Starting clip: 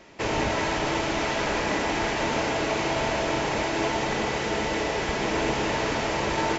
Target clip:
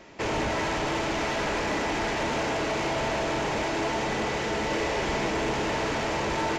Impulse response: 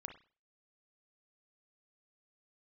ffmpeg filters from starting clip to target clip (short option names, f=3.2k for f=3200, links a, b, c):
-filter_complex "[0:a]asoftclip=type=tanh:threshold=-23.5dB,asettb=1/sr,asplit=3[a][b][c];[a]atrim=end=4.664[d];[b]atrim=start=4.66:end=5.28,asetpts=PTS-STARTPTS,afade=t=in:d=0.004:c=qsin,afade=t=out:st=0.616:d=0.004:c=qsin,asplit=2[e][f];[f]adelay=45,volume=-6dB[g];[e][g]amix=inputs=2:normalize=0,atrim=end_sample=27342[h];[c]atrim=start=5.276[i];[d][h]acrossfade=d=0.004:c1=hsin:c2=qsin[j];[j][i]acrossfade=d=0.004:c1=qsin:c2=hsin,asplit=2[k][l];[1:a]atrim=start_sample=2205,lowpass=3k[m];[l][m]afir=irnorm=-1:irlink=0,volume=-10dB[n];[k][n]amix=inputs=2:normalize=0"